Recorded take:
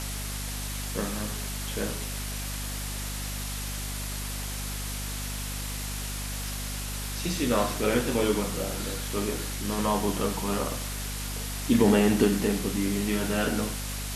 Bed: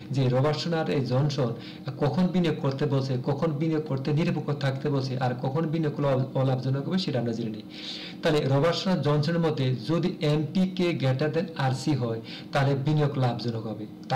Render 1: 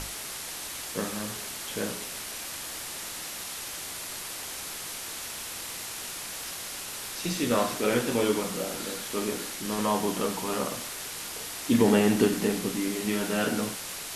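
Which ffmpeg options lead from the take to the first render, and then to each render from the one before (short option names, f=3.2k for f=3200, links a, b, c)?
-af "bandreject=f=50:t=h:w=6,bandreject=f=100:t=h:w=6,bandreject=f=150:t=h:w=6,bandreject=f=200:t=h:w=6,bandreject=f=250:t=h:w=6"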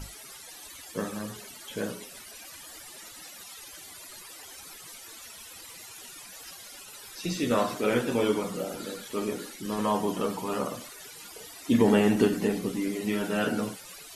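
-af "afftdn=nr=16:nf=-38"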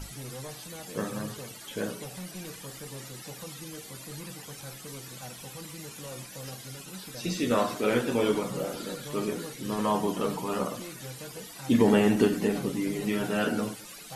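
-filter_complex "[1:a]volume=-18dB[a];[0:a][a]amix=inputs=2:normalize=0"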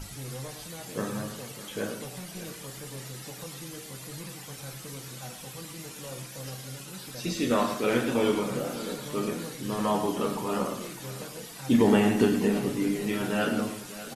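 -filter_complex "[0:a]asplit=2[a][b];[b]adelay=30,volume=-10.5dB[c];[a][c]amix=inputs=2:normalize=0,aecho=1:1:108|602:0.299|0.178"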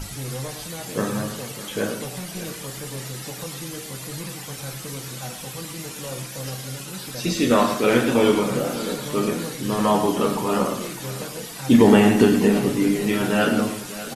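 -af "volume=7.5dB,alimiter=limit=-3dB:level=0:latency=1"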